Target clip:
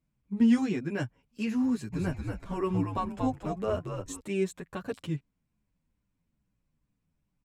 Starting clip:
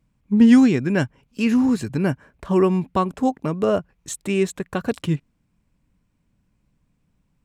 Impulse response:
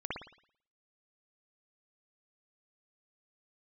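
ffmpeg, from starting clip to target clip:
-filter_complex "[0:a]asplit=3[link_01][link_02][link_03];[link_01]afade=type=out:start_time=1.92:duration=0.02[link_04];[link_02]asplit=6[link_05][link_06][link_07][link_08][link_09][link_10];[link_06]adelay=232,afreqshift=-78,volume=-4dB[link_11];[link_07]adelay=464,afreqshift=-156,volume=-12.6dB[link_12];[link_08]adelay=696,afreqshift=-234,volume=-21.3dB[link_13];[link_09]adelay=928,afreqshift=-312,volume=-29.9dB[link_14];[link_10]adelay=1160,afreqshift=-390,volume=-38.5dB[link_15];[link_05][link_11][link_12][link_13][link_14][link_15]amix=inputs=6:normalize=0,afade=type=in:start_time=1.92:duration=0.02,afade=type=out:start_time=4.18:duration=0.02[link_16];[link_03]afade=type=in:start_time=4.18:duration=0.02[link_17];[link_04][link_16][link_17]amix=inputs=3:normalize=0,asplit=2[link_18][link_19];[link_19]adelay=9,afreqshift=-2.4[link_20];[link_18][link_20]amix=inputs=2:normalize=1,volume=-8dB"

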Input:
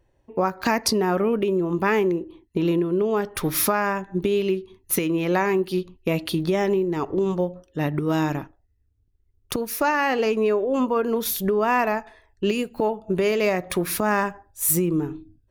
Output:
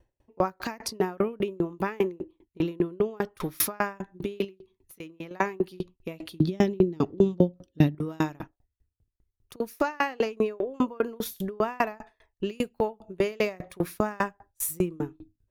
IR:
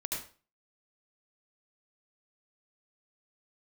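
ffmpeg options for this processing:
-filter_complex "[0:a]asettb=1/sr,asplit=3[link_01][link_02][link_03];[link_01]atrim=end=4.444[link_04];[link_02]atrim=start=4.44:end=5.31,asetpts=PTS-STARTPTS,afade=type=in:duration=0.004:curve=qsin,afade=type=out:start_time=0.866:duration=0.004:curve=qsin,acompressor=threshold=-33dB:ratio=5[link_05];[link_03]atrim=start=5.306[link_06];[link_04][link_05]acrossfade=duration=0.004:curve1=hsin:curve2=qsin[link_07];[link_07][link_06]acrossfade=duration=0.004:curve1=qsin:curve2=hsin,asettb=1/sr,asplit=3[link_08][link_09][link_10];[link_08]atrim=end=6.404[link_11];[link_09]atrim=start=6.4:end=7.95,asetpts=PTS-STARTPTS,afade=type=in:duration=0.004:curve=qsin,afade=type=out:start_time=1.546:duration=0.004:curve=qsin,equalizer=frequency=125:width_type=o:width=1:gain=8,equalizer=frequency=250:width_type=o:width=1:gain=10,equalizer=frequency=1000:width_type=o:width=1:gain=-6,equalizer=frequency=2000:width_type=o:width=1:gain=-3,equalizer=frequency=4000:width_type=o:width=1:gain=8,equalizer=frequency=8000:width_type=o:width=1:gain=-3[link_12];[link_10]atrim=start=7.946[link_13];[link_11][link_12]acrossfade=duration=0.004:curve1=hsin:curve2=qsin[link_14];[link_14][link_13]acrossfade=duration=0.004:curve1=qsin:curve2=hsin,aeval=exprs='val(0)*pow(10,-33*if(lt(mod(5*n/s,1),2*abs(5)/1000),1-mod(5*n/s,1)/(2*abs(5)/1000),(mod(5*n/s,1)-2*abs(5)/1000)/(1-2*abs(5)/1000))/20)':channel_layout=same,volume=2dB"

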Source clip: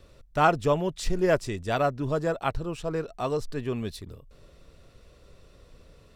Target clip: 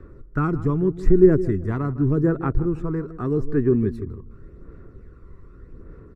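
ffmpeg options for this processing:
ffmpeg -i in.wav -filter_complex "[0:a]firequalizer=gain_entry='entry(160,0);entry(370,6);entry(590,-13);entry(1300,0);entry(1800,-4);entry(3000,-27);entry(7100,-24)':delay=0.05:min_phase=1,acrossover=split=390|3000[link_01][link_02][link_03];[link_02]acompressor=threshold=-37dB:ratio=6[link_04];[link_01][link_04][link_03]amix=inputs=3:normalize=0,aphaser=in_gain=1:out_gain=1:delay=1:decay=0.44:speed=0.84:type=sinusoidal,asplit=2[link_05][link_06];[link_06]adelay=159,lowpass=frequency=1200:poles=1,volume=-13.5dB,asplit=2[link_07][link_08];[link_08]adelay=159,lowpass=frequency=1200:poles=1,volume=0.36,asplit=2[link_09][link_10];[link_10]adelay=159,lowpass=frequency=1200:poles=1,volume=0.36[link_11];[link_07][link_09][link_11]amix=inputs=3:normalize=0[link_12];[link_05][link_12]amix=inputs=2:normalize=0,volume=6dB" out.wav

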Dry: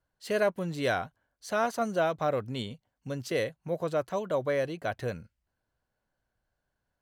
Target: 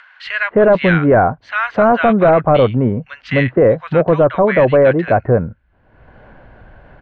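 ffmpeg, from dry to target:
ffmpeg -i in.wav -filter_complex "[0:a]lowpass=frequency=2400:width=0.5412,lowpass=frequency=2400:width=1.3066,acrossover=split=1400[link_01][link_02];[link_01]adelay=260[link_03];[link_03][link_02]amix=inputs=2:normalize=0,acompressor=mode=upward:threshold=-45dB:ratio=2.5,apsyclip=26dB,volume=-5dB" out.wav

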